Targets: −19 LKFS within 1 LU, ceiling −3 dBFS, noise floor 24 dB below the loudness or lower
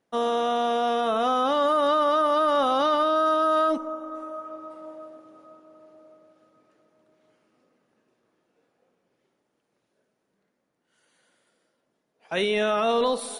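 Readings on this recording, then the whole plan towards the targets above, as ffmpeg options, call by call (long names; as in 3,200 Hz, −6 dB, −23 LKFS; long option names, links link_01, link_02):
integrated loudness −23.0 LKFS; sample peak −14.5 dBFS; target loudness −19.0 LKFS
→ -af "volume=4dB"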